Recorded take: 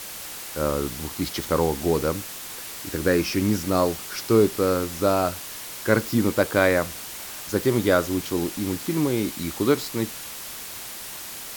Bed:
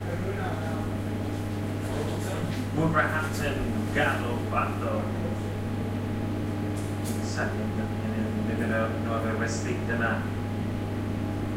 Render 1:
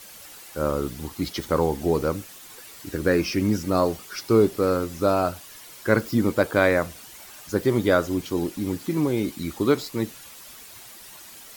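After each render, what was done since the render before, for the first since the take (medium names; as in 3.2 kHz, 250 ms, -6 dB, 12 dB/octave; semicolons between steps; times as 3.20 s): noise reduction 10 dB, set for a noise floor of -37 dBFS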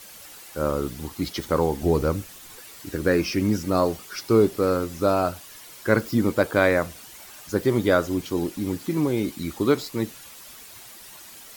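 1.82–2.58 s: bass shelf 97 Hz +11.5 dB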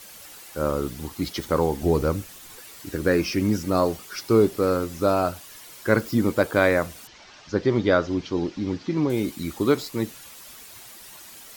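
7.07–9.10 s: steep low-pass 5.8 kHz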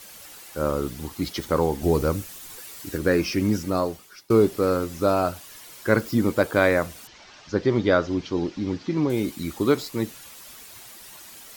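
1.83–2.98 s: treble shelf 5.4 kHz +4.5 dB; 3.57–4.30 s: fade out, to -21.5 dB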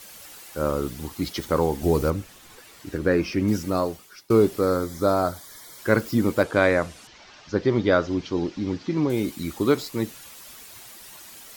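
2.10–3.48 s: low-pass 2.8 kHz 6 dB/octave; 4.61–5.79 s: Butterworth band-stop 2.7 kHz, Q 3.2; 6.43–7.93 s: Bessel low-pass 8.1 kHz, order 4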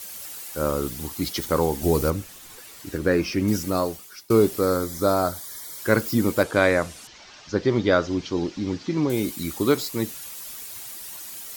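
treble shelf 5.4 kHz +9 dB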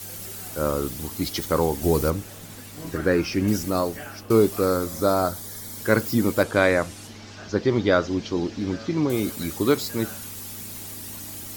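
add bed -14 dB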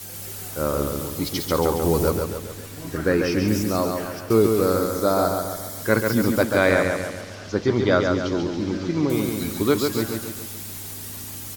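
feedback delay 139 ms, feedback 50%, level -4.5 dB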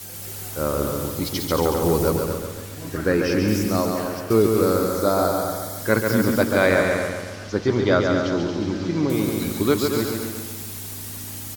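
delay 230 ms -7.5 dB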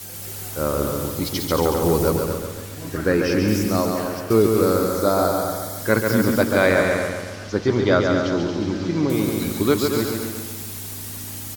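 trim +1 dB; peak limiter -3 dBFS, peak gain reduction 1.5 dB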